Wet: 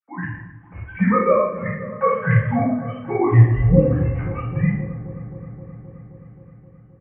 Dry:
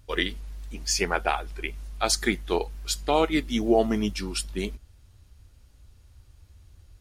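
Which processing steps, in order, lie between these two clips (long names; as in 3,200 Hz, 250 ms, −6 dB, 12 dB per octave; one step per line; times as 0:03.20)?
three sine waves on the formant tracks
automatic gain control gain up to 14 dB
double-tracking delay 40 ms −8 dB
delay with a low-pass on its return 263 ms, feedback 76%, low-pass 1,300 Hz, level −14 dB
convolution reverb RT60 0.70 s, pre-delay 3 ms, DRR −10.5 dB
single-sideband voice off tune −200 Hz 240–2,200 Hz
level −13.5 dB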